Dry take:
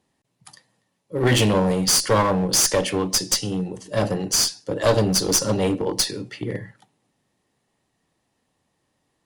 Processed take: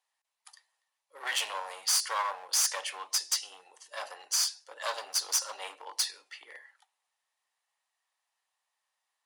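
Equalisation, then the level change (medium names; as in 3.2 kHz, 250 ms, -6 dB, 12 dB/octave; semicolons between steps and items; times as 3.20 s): high-pass 830 Hz 24 dB/octave; -8.0 dB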